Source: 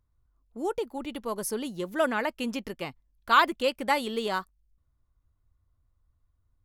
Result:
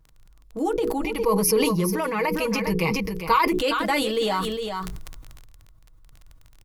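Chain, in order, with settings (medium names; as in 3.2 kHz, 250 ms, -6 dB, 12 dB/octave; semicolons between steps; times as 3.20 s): bass shelf 250 Hz +5.5 dB; comb 6.3 ms, depth 90%; delay 405 ms -13.5 dB; compression 6:1, threshold -30 dBFS, peak gain reduction 17.5 dB; 1.04–3.52 s: rippled EQ curve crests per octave 0.84, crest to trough 13 dB; crackle 19 per s -45 dBFS; hum notches 60/120/180/240/300/360/420/480 Hz; decay stretcher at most 25 dB/s; trim +8 dB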